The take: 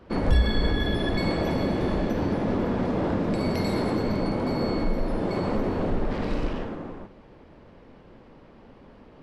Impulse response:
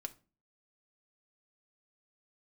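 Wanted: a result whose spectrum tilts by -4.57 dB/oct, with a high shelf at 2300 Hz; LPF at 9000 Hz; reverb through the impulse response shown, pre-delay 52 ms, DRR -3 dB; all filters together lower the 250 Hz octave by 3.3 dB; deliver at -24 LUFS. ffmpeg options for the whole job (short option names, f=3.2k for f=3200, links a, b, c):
-filter_complex "[0:a]lowpass=9k,equalizer=f=250:t=o:g=-4.5,highshelf=f=2.3k:g=7,asplit=2[a][b];[1:a]atrim=start_sample=2205,adelay=52[c];[b][c]afir=irnorm=-1:irlink=0,volume=6dB[d];[a][d]amix=inputs=2:normalize=0,volume=-1.5dB"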